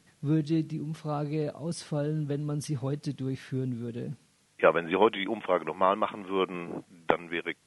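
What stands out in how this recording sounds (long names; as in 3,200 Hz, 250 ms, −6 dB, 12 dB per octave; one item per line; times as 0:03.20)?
background noise floor −66 dBFS
spectral slope −5.5 dB per octave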